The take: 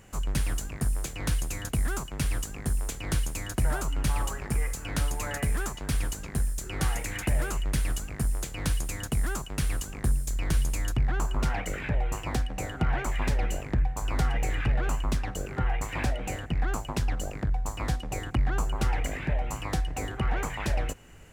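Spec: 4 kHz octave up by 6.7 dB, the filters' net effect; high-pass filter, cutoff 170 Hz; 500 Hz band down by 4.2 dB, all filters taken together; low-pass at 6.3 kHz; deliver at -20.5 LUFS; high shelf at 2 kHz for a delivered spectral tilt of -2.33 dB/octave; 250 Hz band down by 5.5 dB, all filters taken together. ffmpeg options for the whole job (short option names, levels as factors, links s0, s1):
-af "highpass=170,lowpass=6300,equalizer=f=250:t=o:g=-4.5,equalizer=f=500:t=o:g=-4.5,highshelf=f=2000:g=5.5,equalizer=f=4000:t=o:g=4.5,volume=4.73"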